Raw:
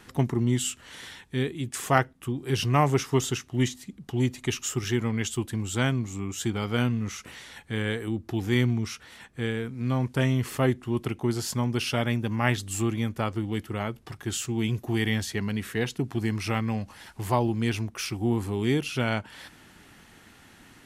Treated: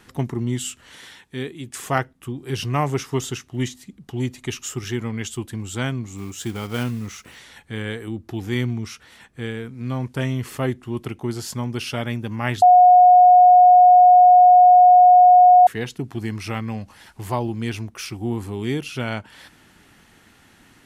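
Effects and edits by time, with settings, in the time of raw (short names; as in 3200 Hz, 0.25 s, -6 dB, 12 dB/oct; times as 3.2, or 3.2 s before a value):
0.97–1.7 low shelf 100 Hz -11 dB
6.16–7.41 block floating point 5-bit
12.62–15.67 bleep 724 Hz -7 dBFS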